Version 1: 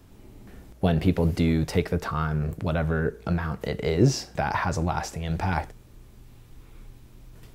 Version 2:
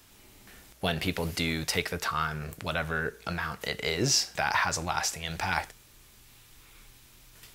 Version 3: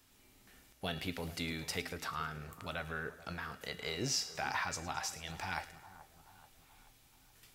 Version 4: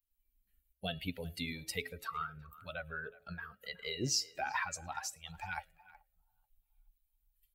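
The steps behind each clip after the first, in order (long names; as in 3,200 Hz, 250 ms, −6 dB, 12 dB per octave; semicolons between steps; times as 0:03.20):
tilt shelving filter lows −10 dB, about 920 Hz; level −1.5 dB
tuned comb filter 260 Hz, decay 0.54 s, harmonics odd, mix 70%; echo with a time of its own for lows and highs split 1,400 Hz, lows 431 ms, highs 108 ms, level −15.5 dB
spectral dynamics exaggerated over time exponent 2; hum removal 107.3 Hz, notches 6; far-end echo of a speakerphone 370 ms, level −19 dB; level +4 dB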